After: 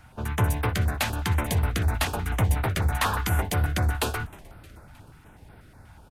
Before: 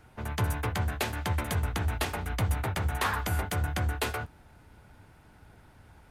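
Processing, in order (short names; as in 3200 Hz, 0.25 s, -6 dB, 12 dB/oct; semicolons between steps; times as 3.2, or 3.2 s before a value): frequency-shifting echo 0.311 s, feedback 59%, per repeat -55 Hz, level -23 dB; stepped notch 8.2 Hz 400–6800 Hz; gain +5.5 dB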